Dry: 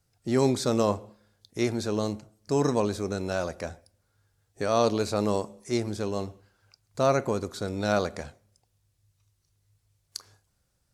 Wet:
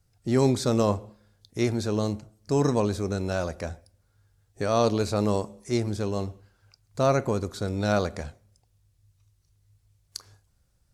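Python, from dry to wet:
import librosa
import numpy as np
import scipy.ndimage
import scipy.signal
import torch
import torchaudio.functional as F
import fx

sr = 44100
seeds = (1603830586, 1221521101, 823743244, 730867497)

y = fx.low_shelf(x, sr, hz=110.0, db=10.5)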